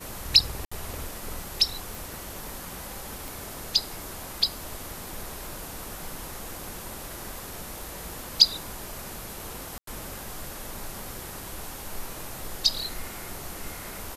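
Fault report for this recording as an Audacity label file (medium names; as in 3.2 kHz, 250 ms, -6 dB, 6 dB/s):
0.650000	0.710000	dropout 65 ms
1.950000	1.950000	pop
3.280000	3.280000	pop
9.780000	9.870000	dropout 93 ms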